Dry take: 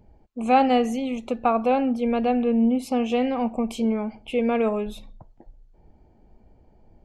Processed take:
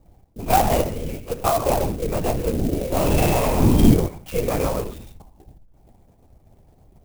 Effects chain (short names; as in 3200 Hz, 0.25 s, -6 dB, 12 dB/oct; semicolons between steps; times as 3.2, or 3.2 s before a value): bell 220 Hz -4.5 dB 0.77 oct; 2.75–3.94 flutter echo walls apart 3 m, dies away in 1.4 s; non-linear reverb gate 0.18 s flat, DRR 6.5 dB; LPC vocoder at 8 kHz whisper; clock jitter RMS 0.06 ms; gain +1 dB